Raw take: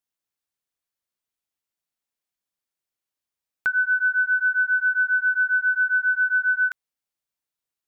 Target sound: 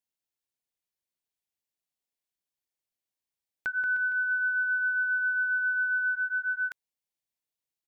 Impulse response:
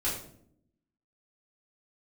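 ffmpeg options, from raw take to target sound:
-filter_complex "[0:a]equalizer=frequency=1300:width_type=o:width=0.54:gain=-8.5,asplit=3[link_01][link_02][link_03];[link_01]afade=type=out:start_time=3.77:duration=0.02[link_04];[link_02]aecho=1:1:80|180|305|461.2|656.6:0.631|0.398|0.251|0.158|0.1,afade=type=in:start_time=3.77:duration=0.02,afade=type=out:start_time=6.14:duration=0.02[link_05];[link_03]afade=type=in:start_time=6.14:duration=0.02[link_06];[link_04][link_05][link_06]amix=inputs=3:normalize=0,volume=-3.5dB"

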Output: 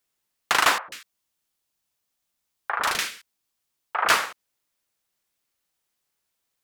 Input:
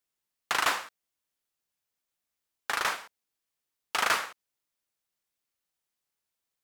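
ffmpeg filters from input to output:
ffmpeg -i in.wav -filter_complex "[0:a]asettb=1/sr,asplit=3[link_01][link_02][link_03];[link_01]atrim=end=0.784[link_04];[link_02]atrim=start=0.78:end=4.1,asetpts=PTS-STARTPTS,afade=type=in:duration=0.004:curve=qsin,afade=type=out:start_time=3.316:duration=0.004:curve=qsin,acrossover=split=470|1800[link_05][link_06][link_07];[link_05]adelay=100[link_08];[link_07]adelay=140[link_09];[link_08][link_06][link_09]amix=inputs=3:normalize=0,atrim=end_sample=146412[link_10];[link_03]atrim=start=4.096[link_11];[link_04][link_10]acrossfade=duration=0.004:curve1=hsin:curve2=qsin[link_12];[link_12][link_11]acrossfade=duration=0.004:curve1=qsin:curve2=hsin,volume=7dB" out.wav

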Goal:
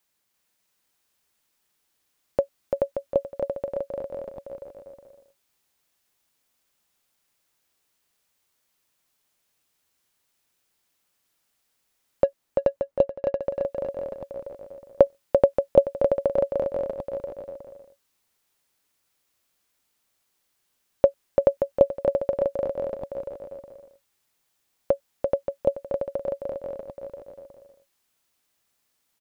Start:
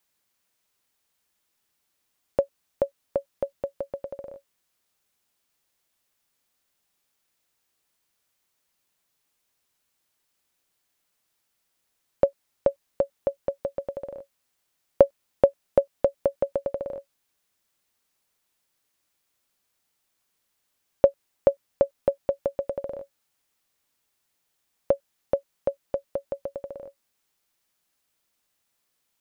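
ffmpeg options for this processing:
ffmpeg -i in.wav -filter_complex "[0:a]asettb=1/sr,asplit=3[link_01][link_02][link_03];[link_01]atrim=end=12.244[link_04];[link_02]atrim=start=12.24:end=13.42,asetpts=PTS-STARTPTS,afade=type=in:duration=0.004:curve=qsin,afade=type=out:start_time=1.176:duration=0.004:curve=qsin,adynamicsmooth=sensitivity=2.5:basefreq=1500[link_05];[link_03]atrim=start=13.416[link_06];[link_04][link_05]acrossfade=duration=0.004:curve1=hsin:curve2=qsin[link_07];[link_07][link_06]acrossfade=duration=0.004:curve1=qsin:curve2=hsin,aecho=1:1:340|578|744.6|861.2|942.9:0.631|0.398|0.251|0.158|0.1" out.wav

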